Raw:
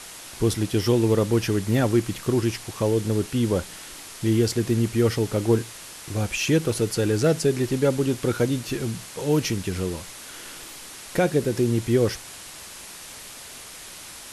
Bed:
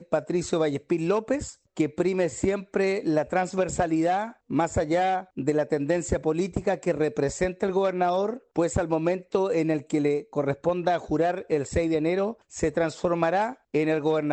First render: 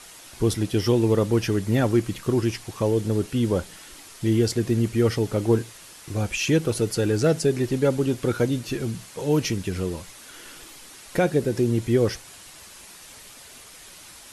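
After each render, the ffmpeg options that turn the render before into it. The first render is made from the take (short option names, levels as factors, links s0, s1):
-af "afftdn=nr=6:nf=-41"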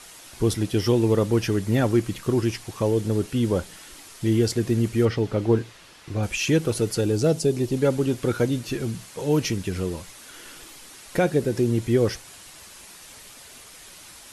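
-filter_complex "[0:a]asettb=1/sr,asplit=3[s0][s1][s2];[s0]atrim=end=5.054[s3];[s1]atrim=start=5.05:end=6.23,asetpts=PTS-STARTPTS,afade=t=in:d=0.004:c=qsin,afade=t=out:st=1.176:d=0.004:c=qsin,acrossover=split=5000[s4][s5];[s5]acompressor=threshold=0.00126:ratio=4:attack=1:release=60[s6];[s4][s6]amix=inputs=2:normalize=0[s7];[s2]atrim=start=6.226[s8];[s3][s7]acrossfade=d=0.004:c1=hsin:c2=qsin[s9];[s9][s8]acrossfade=d=0.004:c1=qsin:c2=hsin,asettb=1/sr,asplit=3[s10][s11][s12];[s10]atrim=end=7.014[s13];[s11]atrim=start=7.01:end=7.77,asetpts=PTS-STARTPTS,afade=t=in:d=0.004:c=qsin,afade=t=out:st=0.756:d=0.004:c=qsin,equalizer=f=1700:w=1.5:g=-9.5[s14];[s12]atrim=start=7.766[s15];[s13][s14]acrossfade=d=0.004:c1=hsin:c2=qsin[s16];[s16][s15]acrossfade=d=0.004:c1=qsin:c2=hsin"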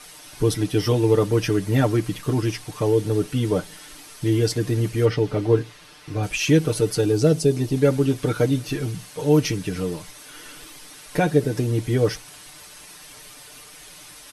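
-af "bandreject=f=7100:w=11,aecho=1:1:6.7:0.74"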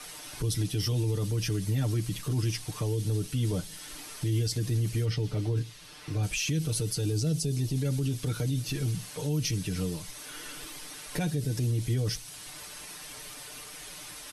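-filter_complex "[0:a]acrossover=split=190|3000[s0][s1][s2];[s1]acompressor=threshold=0.00631:ratio=2[s3];[s0][s3][s2]amix=inputs=3:normalize=0,alimiter=limit=0.0891:level=0:latency=1:release=33"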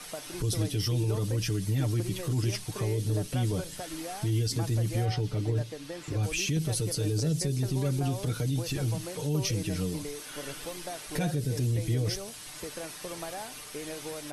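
-filter_complex "[1:a]volume=0.158[s0];[0:a][s0]amix=inputs=2:normalize=0"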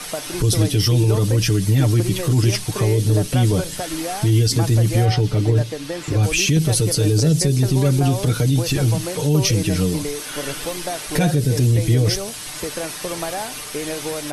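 -af "volume=3.98"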